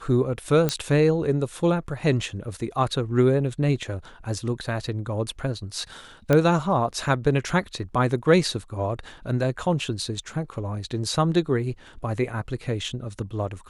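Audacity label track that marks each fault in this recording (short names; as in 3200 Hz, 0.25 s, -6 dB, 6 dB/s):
0.690000	0.690000	pop -8 dBFS
6.330000	6.330000	pop -8 dBFS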